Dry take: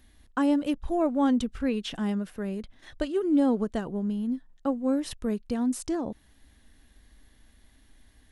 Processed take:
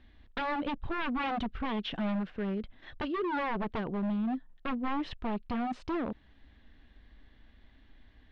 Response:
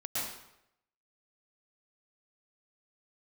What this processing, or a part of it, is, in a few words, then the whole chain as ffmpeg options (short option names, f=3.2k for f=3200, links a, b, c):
synthesiser wavefolder: -af "aeval=exprs='0.0447*(abs(mod(val(0)/0.0447+3,4)-2)-1)':c=same,lowpass=f=3.6k:w=0.5412,lowpass=f=3.6k:w=1.3066"